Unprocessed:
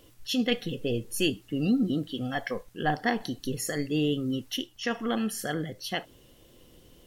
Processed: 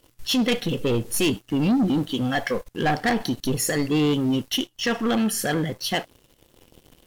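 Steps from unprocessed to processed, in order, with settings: waveshaping leveller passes 3; trim -2 dB

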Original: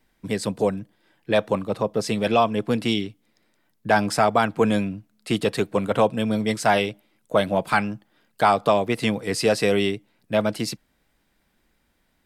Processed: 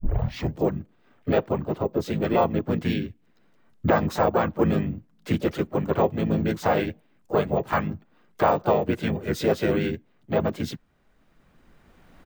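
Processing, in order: tape start-up on the opening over 0.62 s; recorder AGC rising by 11 dB/s; treble shelf 2.7 kHz -11 dB; harmony voices -5 st -1 dB, -4 st -3 dB, +4 st -9 dB; careless resampling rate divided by 2×, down filtered, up hold; trim -5.5 dB

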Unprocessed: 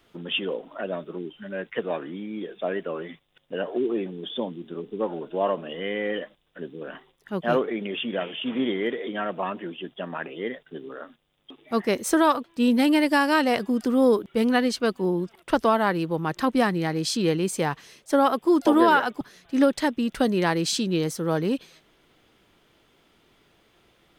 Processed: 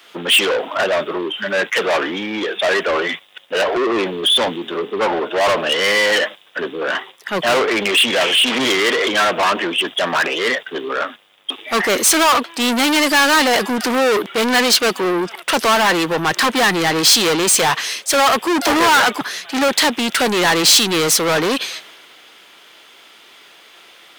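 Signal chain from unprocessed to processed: overdrive pedal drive 35 dB, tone 3.3 kHz, clips at -5.5 dBFS; tilt EQ +2.5 dB/octave; three bands expanded up and down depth 40%; trim -1.5 dB

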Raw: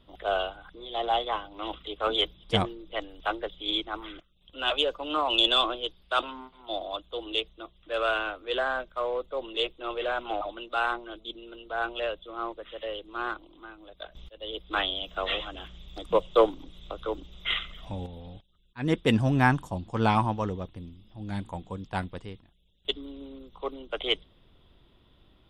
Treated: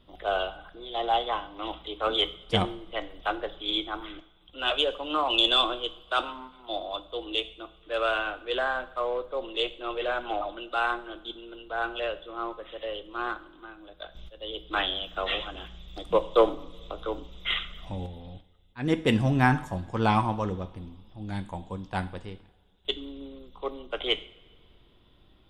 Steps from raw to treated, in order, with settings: two-slope reverb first 0.51 s, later 2 s, from -18 dB, DRR 10.5 dB

